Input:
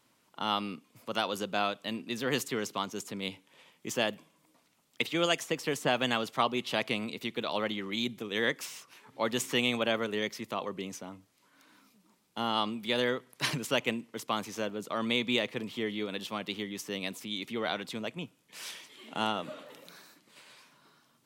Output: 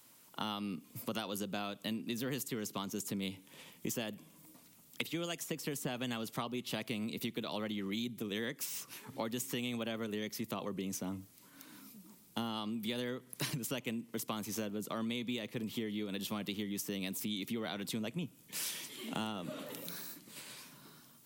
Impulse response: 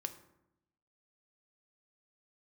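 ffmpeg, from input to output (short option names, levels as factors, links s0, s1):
-filter_complex "[0:a]acrossover=split=330[s0][s1];[s0]dynaudnorm=f=260:g=3:m=3.16[s2];[s1]aemphasis=mode=production:type=50fm[s3];[s2][s3]amix=inputs=2:normalize=0,acompressor=threshold=0.0158:ratio=12,volume=1.12"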